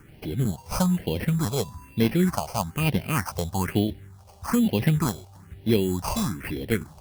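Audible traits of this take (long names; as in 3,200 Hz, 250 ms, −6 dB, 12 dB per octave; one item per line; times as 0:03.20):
aliases and images of a low sample rate 3,700 Hz, jitter 0%
phaser sweep stages 4, 1.1 Hz, lowest notch 280–1,300 Hz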